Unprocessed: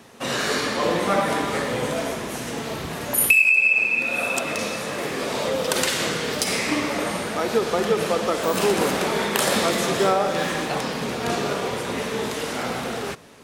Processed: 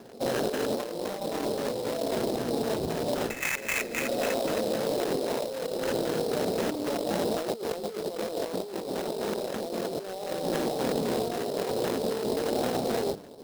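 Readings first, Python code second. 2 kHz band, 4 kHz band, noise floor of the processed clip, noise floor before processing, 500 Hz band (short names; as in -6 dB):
-14.5 dB, -10.0 dB, -39 dBFS, -31 dBFS, -4.0 dB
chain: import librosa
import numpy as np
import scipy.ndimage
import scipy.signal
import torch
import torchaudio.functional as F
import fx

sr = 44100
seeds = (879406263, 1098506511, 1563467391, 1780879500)

y = scipy.ndimage.median_filter(x, 41, mode='constant')
y = fx.bass_treble(y, sr, bass_db=-10, treble_db=0)
y = fx.hum_notches(y, sr, base_hz=50, count=6)
y = fx.filter_lfo_lowpass(y, sr, shape='square', hz=3.8, low_hz=770.0, high_hz=2000.0, q=1.0)
y = fx.sample_hold(y, sr, seeds[0], rate_hz=4600.0, jitter_pct=20)
y = fx.over_compress(y, sr, threshold_db=-34.0, ratio=-1.0)
y = F.gain(torch.from_numpy(y), 3.5).numpy()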